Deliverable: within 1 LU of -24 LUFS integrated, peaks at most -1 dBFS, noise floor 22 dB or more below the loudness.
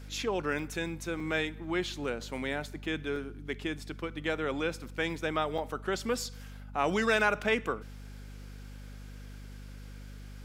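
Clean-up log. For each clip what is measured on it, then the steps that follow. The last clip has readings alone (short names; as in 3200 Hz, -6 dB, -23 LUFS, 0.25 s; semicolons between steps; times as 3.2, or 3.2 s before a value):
dropouts 4; longest dropout 3.8 ms; hum 50 Hz; harmonics up to 250 Hz; hum level -43 dBFS; loudness -32.5 LUFS; peak -12.5 dBFS; loudness target -24.0 LUFS
-> interpolate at 0.59/1.2/3.16/5.58, 3.8 ms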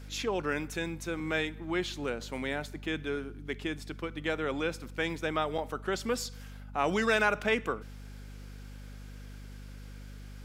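dropouts 0; hum 50 Hz; harmonics up to 250 Hz; hum level -43 dBFS
-> notches 50/100/150/200/250 Hz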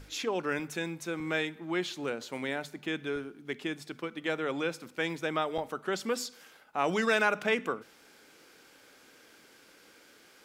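hum none; loudness -33.0 LUFS; peak -12.5 dBFS; loudness target -24.0 LUFS
-> gain +9 dB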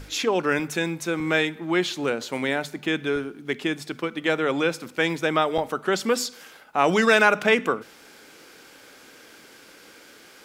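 loudness -24.0 LUFS; peak -3.5 dBFS; noise floor -50 dBFS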